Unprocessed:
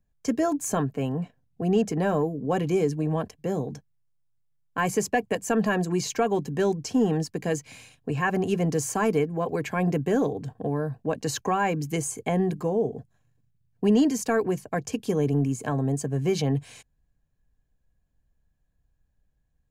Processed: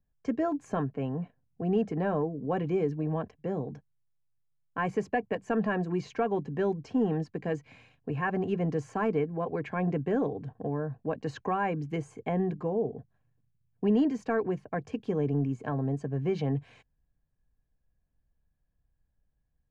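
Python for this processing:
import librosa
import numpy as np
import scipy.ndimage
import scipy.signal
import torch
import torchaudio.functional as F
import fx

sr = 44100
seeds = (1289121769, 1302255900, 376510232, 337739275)

y = scipy.signal.sosfilt(scipy.signal.butter(2, 2300.0, 'lowpass', fs=sr, output='sos'), x)
y = F.gain(torch.from_numpy(y), -4.5).numpy()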